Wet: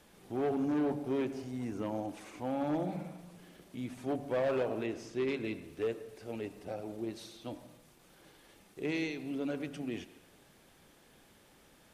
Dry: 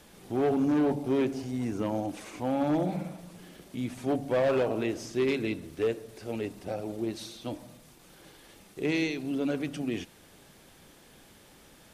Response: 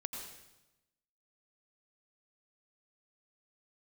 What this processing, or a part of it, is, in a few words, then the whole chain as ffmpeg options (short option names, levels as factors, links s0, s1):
filtered reverb send: -filter_complex "[0:a]asplit=2[s0][s1];[s1]highpass=f=330:p=1,lowpass=3500[s2];[1:a]atrim=start_sample=2205[s3];[s2][s3]afir=irnorm=-1:irlink=0,volume=0.376[s4];[s0][s4]amix=inputs=2:normalize=0,asettb=1/sr,asplit=3[s5][s6][s7];[s5]atrim=end=4.864[s8];[s6]atrim=start=4.86:end=5.44,asetpts=PTS-STARTPTS,afade=t=in:d=0.004:c=qsin,afade=t=out:st=0.576:d=0.004:c=qsin,highshelf=f=9400:g=-8[s9];[s7]atrim=start=5.436[s10];[s8][s9]acrossfade=d=0.004:c1=hsin:c2=qsin[s11];[s11][s10]acrossfade=d=0.004:c1=qsin:c2=hsin,volume=0.422"